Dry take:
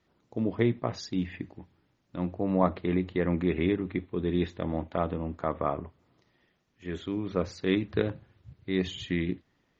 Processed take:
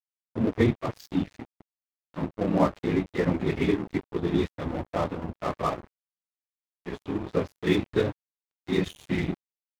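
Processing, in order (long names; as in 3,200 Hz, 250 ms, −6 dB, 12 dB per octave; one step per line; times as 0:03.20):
random phases in long frames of 50 ms
dead-zone distortion −37.5 dBFS
level +4 dB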